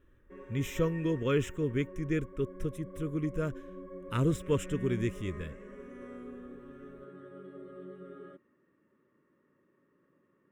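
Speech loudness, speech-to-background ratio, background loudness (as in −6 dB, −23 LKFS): −33.0 LKFS, 14.0 dB, −47.0 LKFS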